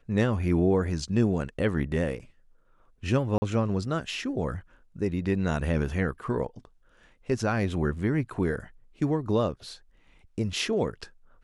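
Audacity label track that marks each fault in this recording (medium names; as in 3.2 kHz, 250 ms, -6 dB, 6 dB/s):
3.380000	3.420000	dropout 40 ms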